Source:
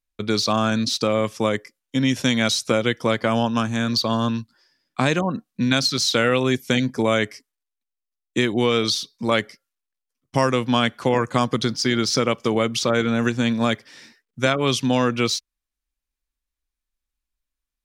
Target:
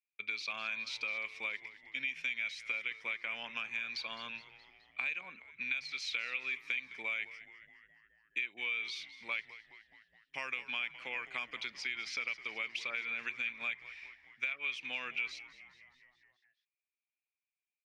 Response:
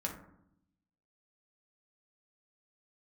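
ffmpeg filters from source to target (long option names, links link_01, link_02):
-filter_complex "[0:a]bandpass=frequency=2400:width_type=q:width=12:csg=0,acompressor=threshold=-41dB:ratio=5,asplit=2[link_01][link_02];[link_02]asplit=6[link_03][link_04][link_05][link_06][link_07][link_08];[link_03]adelay=210,afreqshift=-100,volume=-16dB[link_09];[link_04]adelay=420,afreqshift=-200,volume=-20.4dB[link_10];[link_05]adelay=630,afreqshift=-300,volume=-24.9dB[link_11];[link_06]adelay=840,afreqshift=-400,volume=-29.3dB[link_12];[link_07]adelay=1050,afreqshift=-500,volume=-33.7dB[link_13];[link_08]adelay=1260,afreqshift=-600,volume=-38.2dB[link_14];[link_09][link_10][link_11][link_12][link_13][link_14]amix=inputs=6:normalize=0[link_15];[link_01][link_15]amix=inputs=2:normalize=0,volume=6.5dB"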